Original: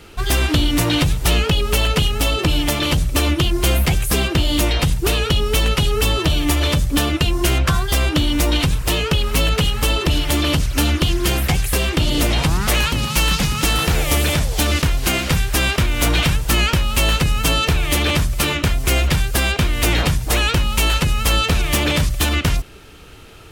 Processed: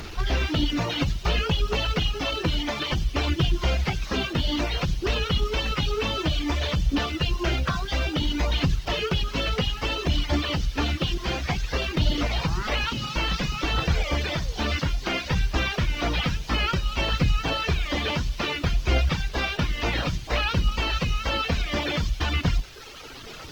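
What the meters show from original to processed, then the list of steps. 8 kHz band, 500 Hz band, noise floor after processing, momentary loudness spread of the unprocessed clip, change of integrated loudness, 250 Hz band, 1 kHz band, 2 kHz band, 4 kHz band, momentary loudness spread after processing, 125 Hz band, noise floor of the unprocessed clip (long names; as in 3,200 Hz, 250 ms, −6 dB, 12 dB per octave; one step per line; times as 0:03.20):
−17.5 dB, −7.0 dB, −38 dBFS, 2 LU, −8.0 dB, −7.5 dB, −6.0 dB, −7.0 dB, −7.5 dB, 3 LU, −8.0 dB, −28 dBFS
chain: linear delta modulator 32 kbit/s, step −25.5 dBFS
mains-hum notches 50/100/150/200/250/300/350/400/450 Hz
reverb reduction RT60 1.7 s
bit reduction 8 bits
on a send: delay with a high-pass on its return 95 ms, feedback 80%, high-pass 3,800 Hz, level −12.5 dB
on the sum: flanger 0.58 Hz, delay 0 ms, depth 4.6 ms, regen +75%
Opus 20 kbit/s 48,000 Hz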